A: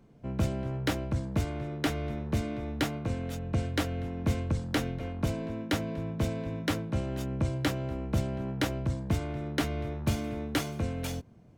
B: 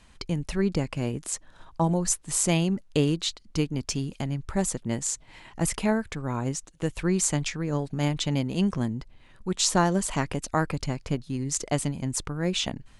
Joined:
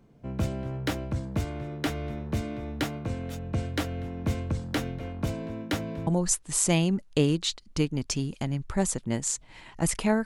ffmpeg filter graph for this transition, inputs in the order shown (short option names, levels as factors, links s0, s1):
-filter_complex "[0:a]apad=whole_dur=10.25,atrim=end=10.25,atrim=end=6.072[s0];[1:a]atrim=start=1.858:end=6.04[s1];[s0][s1]acrossfade=d=0.004:c1=hsin:c2=hsin"